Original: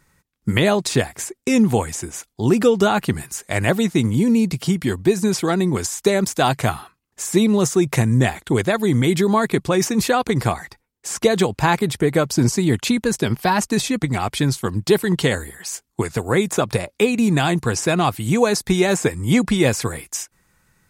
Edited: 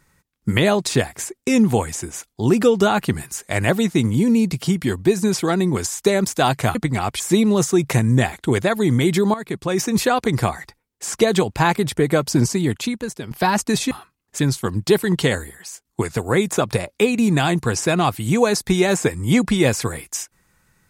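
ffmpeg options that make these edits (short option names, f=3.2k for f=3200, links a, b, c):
-filter_complex "[0:a]asplit=8[a][b][c][d][e][f][g][h];[a]atrim=end=6.752[i];[b]atrim=start=13.938:end=14.392[j];[c]atrim=start=7.228:end=9.37,asetpts=PTS-STARTPTS,afade=t=out:st=2.138:d=0.004:c=hsin:silence=0.188365[k];[d]atrim=start=9.37:end=13.34,asetpts=PTS-STARTPTS,afade=t=in:d=0.6:silence=0.188365,afade=t=out:st=3.05:d=0.92:silence=0.199526[l];[e]atrim=start=13.34:end=13.942,asetpts=PTS-STARTPTS,afade=t=in:d=0.004:c=hsin:silence=0.199526[m];[f]atrim=start=6.748:end=7.232[n];[g]atrim=start=14.388:end=15.85,asetpts=PTS-STARTPTS,afade=t=out:st=0.962:d=0.5:silence=0.266073[o];[h]atrim=start=15.85,asetpts=PTS-STARTPTS,afade=t=in:d=0.004:c=hsin:silence=0.266073[p];[i][j]acrossfade=d=0.004:c1=hsin:c2=hsin[q];[k][l][m]concat=n=3:v=0:a=1[r];[q][r]acrossfade=d=0.004:c1=hsin:c2=hsin[s];[s][n]acrossfade=d=0.004:c1=hsin:c2=hsin[t];[o][p]concat=n=2:v=0:a=1[u];[t][u]acrossfade=d=0.004:c1=hsin:c2=hsin"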